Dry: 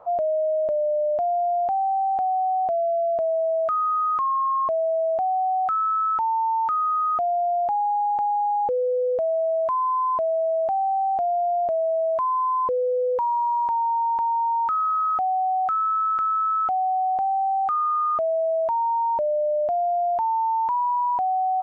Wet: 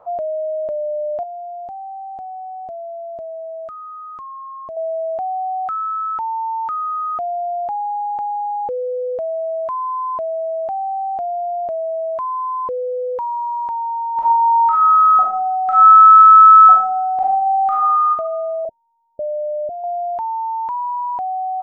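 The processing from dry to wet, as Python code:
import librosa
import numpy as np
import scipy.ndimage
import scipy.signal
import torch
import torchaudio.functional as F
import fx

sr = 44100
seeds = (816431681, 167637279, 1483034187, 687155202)

y = fx.peak_eq(x, sr, hz=1400.0, db=-11.0, octaves=3.0, at=(1.23, 4.77))
y = fx.reverb_throw(y, sr, start_s=14.12, length_s=3.96, rt60_s=0.82, drr_db=-5.0)
y = fx.steep_lowpass(y, sr, hz=680.0, slope=96, at=(18.65, 19.84))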